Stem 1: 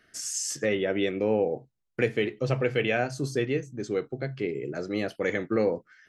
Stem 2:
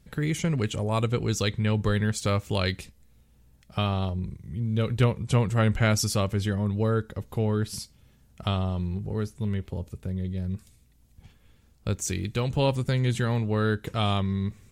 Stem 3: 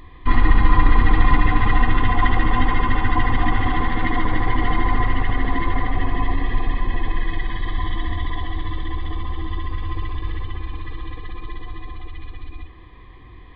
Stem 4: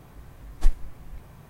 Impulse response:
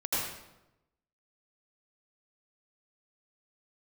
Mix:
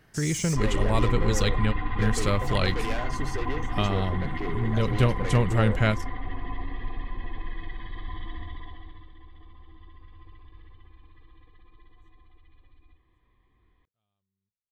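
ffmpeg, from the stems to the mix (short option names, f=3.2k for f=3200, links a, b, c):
-filter_complex "[0:a]asoftclip=type=tanh:threshold=-29dB,volume=-1dB,asplit=2[a][b];[1:a]volume=0dB[c];[2:a]adelay=300,volume=-12.5dB,afade=t=out:st=8.36:d=0.73:silence=0.281838[d];[3:a]volume=-12.5dB[e];[b]apad=whole_len=649142[f];[c][f]sidechaingate=range=-59dB:threshold=-53dB:ratio=16:detection=peak[g];[a][g][d][e]amix=inputs=4:normalize=0"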